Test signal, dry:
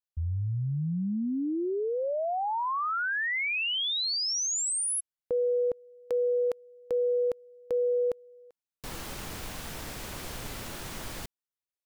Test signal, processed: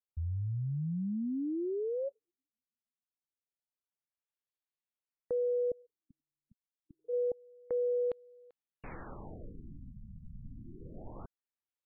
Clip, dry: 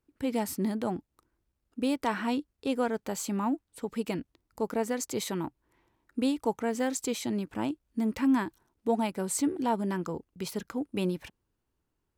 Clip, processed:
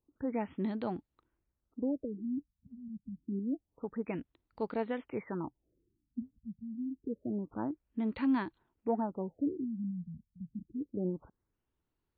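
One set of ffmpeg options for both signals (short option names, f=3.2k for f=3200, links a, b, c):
-af "afftfilt=real='re*lt(b*sr/1024,220*pow(4800/220,0.5+0.5*sin(2*PI*0.27*pts/sr)))':imag='im*lt(b*sr/1024,220*pow(4800/220,0.5+0.5*sin(2*PI*0.27*pts/sr)))':win_size=1024:overlap=0.75,volume=-4.5dB"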